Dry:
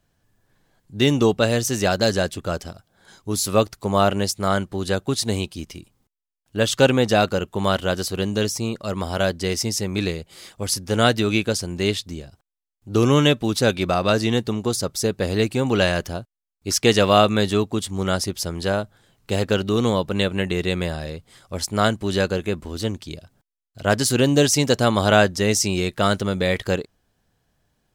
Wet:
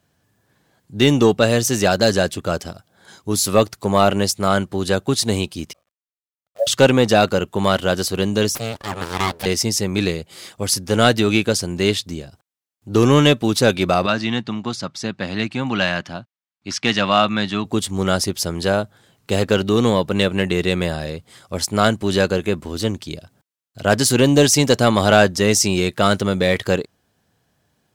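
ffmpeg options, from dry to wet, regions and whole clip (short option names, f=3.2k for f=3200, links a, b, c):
-filter_complex "[0:a]asettb=1/sr,asplit=3[a][b][c];[a]atrim=end=5.734[d];[b]atrim=start=5.73:end=6.67,asetpts=PTS-STARTPTS,afade=t=in:d=0.004:c=qsin,afade=t=out:st=0.936:d=0.004:c=qsin,asuperpass=centerf=630:order=8:qfactor=3,asplit=2[e][f];[f]adelay=42,volume=-13dB[g];[e][g]amix=inputs=2:normalize=0,atrim=end_sample=41454,acrusher=bits=9:dc=4:mix=0:aa=0.000001[h];[c]atrim=start=6.666[i];[d][h]acrossfade=d=0.004:c1=hsin:c2=qsin[j];[j][i]acrossfade=d=0.004:c1=qsin:c2=hsin,asettb=1/sr,asplit=3[k][l][m];[k]atrim=end=8.554[n];[l]atrim=start=8.55:end=9.46,asetpts=PTS-STARTPTS,afade=t=in:d=0.004:c=qsin,afade=t=out:st=0.906:d=0.004:c=qsin,highpass=180,aeval=exprs='abs(val(0))':c=same[o];[m]atrim=start=9.456[p];[n][o]acrossfade=d=0.004:c1=hsin:c2=qsin[q];[q][p]acrossfade=d=0.004:c1=qsin:c2=hsin,asettb=1/sr,asplit=3[r][s][t];[r]atrim=end=14.064[u];[s]atrim=start=14.06:end=17.65,asetpts=PTS-STARTPTS,afade=t=in:d=0.004:c=qsin,afade=t=out:st=3.586:d=0.004:c=qsin,highpass=160,lowpass=3.7k,equalizer=f=440:t=o:w=0.85:g=-14.5[v];[t]atrim=start=17.646[w];[u][v]acrossfade=d=0.004:c1=hsin:c2=qsin[x];[x][w]acrossfade=d=0.004:c1=qsin:c2=hsin,highpass=87,acontrast=36,volume=-1dB"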